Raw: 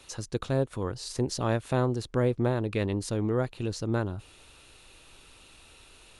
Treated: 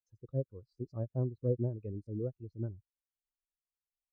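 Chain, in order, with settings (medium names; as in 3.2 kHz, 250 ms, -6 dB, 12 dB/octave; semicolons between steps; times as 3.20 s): tempo 1.5×; spectral contrast expander 2.5:1; trim -5 dB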